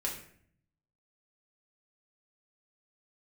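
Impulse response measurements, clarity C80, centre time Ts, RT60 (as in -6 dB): 10.0 dB, 28 ms, 0.60 s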